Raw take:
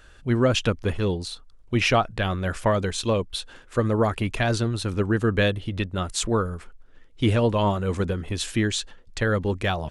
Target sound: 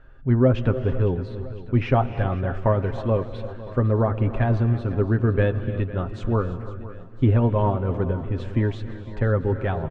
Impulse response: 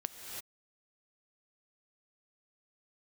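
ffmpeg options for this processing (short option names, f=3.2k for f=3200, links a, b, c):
-filter_complex "[0:a]lowpass=1.4k,lowshelf=f=290:g=5.5,aecho=1:1:7.5:0.47,aecho=1:1:505|1010|1515|2020|2525|3030:0.15|0.0883|0.0521|0.0307|0.0181|0.0107,asplit=2[a][b];[1:a]atrim=start_sample=2205[c];[b][c]afir=irnorm=-1:irlink=0,volume=-4.5dB[d];[a][d]amix=inputs=2:normalize=0,volume=-5.5dB"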